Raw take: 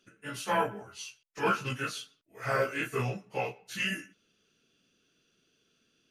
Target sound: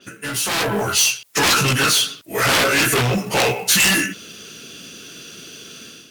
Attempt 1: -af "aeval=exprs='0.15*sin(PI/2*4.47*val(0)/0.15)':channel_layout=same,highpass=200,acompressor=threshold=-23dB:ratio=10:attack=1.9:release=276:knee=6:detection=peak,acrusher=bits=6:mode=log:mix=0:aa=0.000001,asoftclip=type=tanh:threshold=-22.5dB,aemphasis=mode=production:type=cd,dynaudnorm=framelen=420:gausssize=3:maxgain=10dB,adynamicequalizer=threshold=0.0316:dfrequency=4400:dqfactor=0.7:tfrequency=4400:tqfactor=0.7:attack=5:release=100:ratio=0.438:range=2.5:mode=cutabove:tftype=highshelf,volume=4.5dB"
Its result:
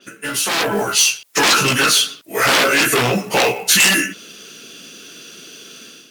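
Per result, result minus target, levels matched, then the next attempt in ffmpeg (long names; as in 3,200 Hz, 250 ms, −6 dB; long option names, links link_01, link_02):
125 Hz band −6.0 dB; soft clipping: distortion −8 dB
-af "aeval=exprs='0.15*sin(PI/2*4.47*val(0)/0.15)':channel_layout=same,highpass=68,acompressor=threshold=-23dB:ratio=10:attack=1.9:release=276:knee=6:detection=peak,acrusher=bits=6:mode=log:mix=0:aa=0.000001,asoftclip=type=tanh:threshold=-22.5dB,aemphasis=mode=production:type=cd,dynaudnorm=framelen=420:gausssize=3:maxgain=10dB,adynamicequalizer=threshold=0.0316:dfrequency=4400:dqfactor=0.7:tfrequency=4400:tqfactor=0.7:attack=5:release=100:ratio=0.438:range=2.5:mode=cutabove:tftype=highshelf,volume=4.5dB"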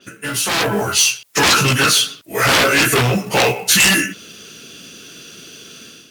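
soft clipping: distortion −8 dB
-af "aeval=exprs='0.15*sin(PI/2*4.47*val(0)/0.15)':channel_layout=same,highpass=68,acompressor=threshold=-23dB:ratio=10:attack=1.9:release=276:knee=6:detection=peak,acrusher=bits=6:mode=log:mix=0:aa=0.000001,asoftclip=type=tanh:threshold=-29dB,aemphasis=mode=production:type=cd,dynaudnorm=framelen=420:gausssize=3:maxgain=10dB,adynamicequalizer=threshold=0.0316:dfrequency=4400:dqfactor=0.7:tfrequency=4400:tqfactor=0.7:attack=5:release=100:ratio=0.438:range=2.5:mode=cutabove:tftype=highshelf,volume=4.5dB"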